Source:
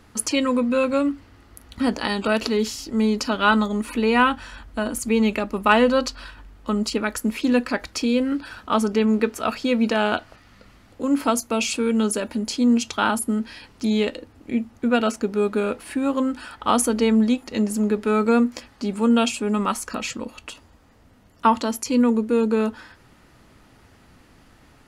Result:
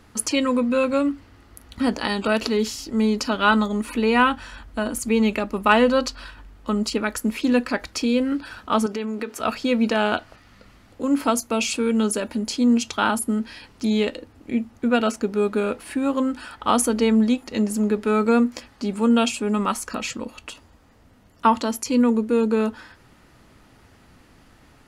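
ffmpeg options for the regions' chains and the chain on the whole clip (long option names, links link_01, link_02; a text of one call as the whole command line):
ffmpeg -i in.wav -filter_complex "[0:a]asettb=1/sr,asplit=3[link_01][link_02][link_03];[link_01]atrim=end=8.864[link_04];[link_02]atrim=start=8.86:end=9.4,asetpts=PTS-STARTPTS,afade=type=in:duration=0.004:curve=qsin,afade=type=out:start_time=0.536:duration=0.004:curve=qsin,highpass=frequency=270:poles=1,acompressor=threshold=-24dB:ratio=5:attack=3.2:release=140:knee=1:detection=peak[link_05];[link_03]atrim=start=9.396[link_06];[link_04][link_05]acrossfade=duration=0.004:curve1=hsin:curve2=qsin[link_07];[link_07][link_06]acrossfade=duration=0.004:curve1=qsin:curve2=hsin" out.wav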